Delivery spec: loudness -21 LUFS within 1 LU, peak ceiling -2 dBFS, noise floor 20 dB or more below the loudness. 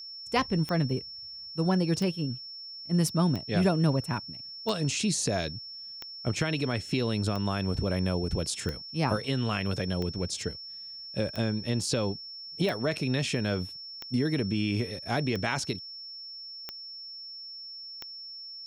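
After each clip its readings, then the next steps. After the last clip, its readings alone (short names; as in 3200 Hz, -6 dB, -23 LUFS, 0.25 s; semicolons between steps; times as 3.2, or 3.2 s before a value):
clicks 14; steady tone 5400 Hz; tone level -40 dBFS; loudness -30.5 LUFS; peak -12.5 dBFS; loudness target -21.0 LUFS
-> de-click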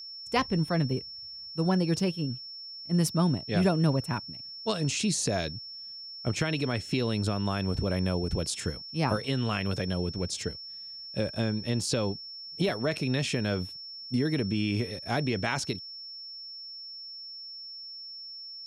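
clicks 0; steady tone 5400 Hz; tone level -40 dBFS
-> notch 5400 Hz, Q 30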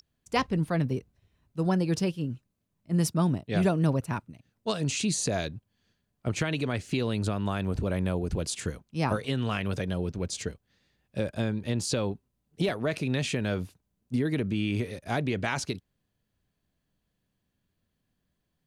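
steady tone none; loudness -30.0 LUFS; peak -12.5 dBFS; loudness target -21.0 LUFS
-> gain +9 dB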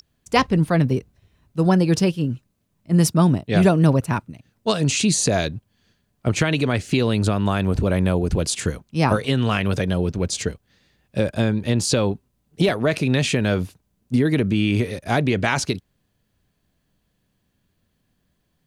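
loudness -21.0 LUFS; peak -3.5 dBFS; noise floor -70 dBFS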